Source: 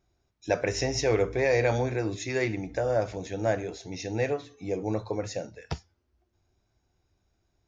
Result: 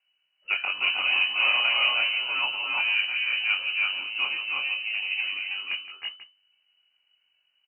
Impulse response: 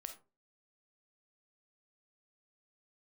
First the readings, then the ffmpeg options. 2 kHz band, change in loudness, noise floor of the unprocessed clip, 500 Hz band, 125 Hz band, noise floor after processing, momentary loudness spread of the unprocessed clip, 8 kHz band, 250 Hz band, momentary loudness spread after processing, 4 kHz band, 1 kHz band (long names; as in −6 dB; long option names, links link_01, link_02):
+12.0 dB, +5.0 dB, −76 dBFS, −20.5 dB, below −30 dB, −73 dBFS, 13 LU, can't be measured, below −20 dB, 9 LU, +17.0 dB, +0.5 dB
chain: -filter_complex "[0:a]aeval=exprs='if(lt(val(0),0),0.708*val(0),val(0))':channel_layout=same,flanger=delay=20:depth=4.3:speed=0.34,asplit=2[link_01][link_02];[link_02]acrusher=bits=3:mode=log:mix=0:aa=0.000001,volume=-7dB[link_03];[link_01][link_03]amix=inputs=2:normalize=0,lowpass=frequency=2600:width_type=q:width=0.5098,lowpass=frequency=2600:width_type=q:width=0.6013,lowpass=frequency=2600:width_type=q:width=0.9,lowpass=frequency=2600:width_type=q:width=2.563,afreqshift=-3000,equalizer=frequency=420:width=1.4:gain=-7,aecho=1:1:166|305|317|338|485:0.237|0.282|0.596|0.668|0.211"